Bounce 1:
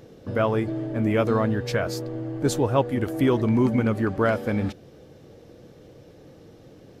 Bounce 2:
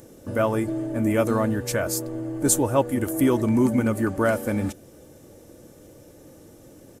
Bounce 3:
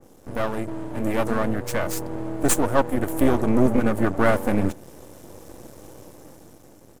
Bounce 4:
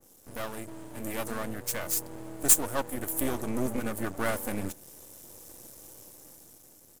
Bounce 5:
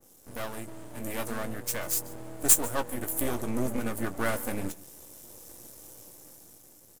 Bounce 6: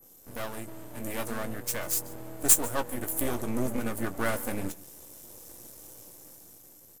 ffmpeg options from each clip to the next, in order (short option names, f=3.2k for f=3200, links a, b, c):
-af "highshelf=f=6k:t=q:w=1.5:g=13.5,aecho=1:1:3.4:0.32"
-af "dynaudnorm=f=290:g=9:m=11dB,aeval=exprs='max(val(0),0)':c=same,adynamicequalizer=threshold=0.01:dfrequency=2200:dqfactor=0.7:tfrequency=2200:tqfactor=0.7:attack=5:release=100:ratio=0.375:range=3:mode=cutabove:tftype=highshelf"
-af "crystalizer=i=5:c=0,volume=-12.5dB"
-filter_complex "[0:a]asplit=2[a][b];[b]adelay=17,volume=-11dB[c];[a][c]amix=inputs=2:normalize=0,aecho=1:1:144:0.0841"
-af "aeval=exprs='val(0)+0.00158*sin(2*PI*12000*n/s)':c=same"